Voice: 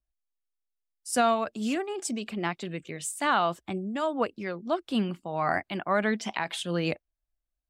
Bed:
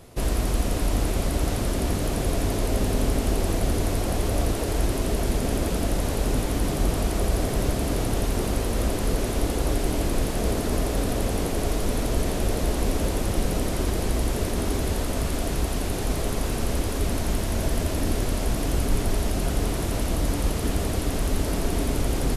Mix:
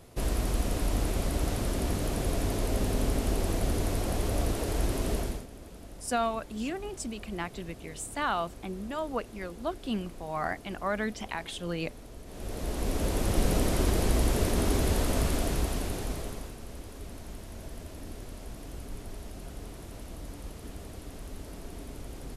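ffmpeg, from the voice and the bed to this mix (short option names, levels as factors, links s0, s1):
-filter_complex "[0:a]adelay=4950,volume=0.562[s0];[1:a]volume=6.31,afade=t=out:st=5.15:d=0.31:silence=0.141254,afade=t=in:st=12.26:d=1.24:silence=0.0891251,afade=t=out:st=15.19:d=1.36:silence=0.149624[s1];[s0][s1]amix=inputs=2:normalize=0"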